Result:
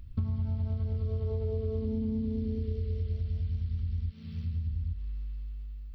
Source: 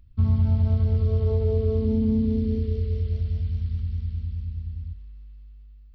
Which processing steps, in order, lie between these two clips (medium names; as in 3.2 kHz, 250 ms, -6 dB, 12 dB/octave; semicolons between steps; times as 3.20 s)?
4.10–4.69 s: high-pass 210 Hz -> 62 Hz 24 dB/octave; compression 8:1, threshold -36 dBFS, peak gain reduction 19 dB; trim +7 dB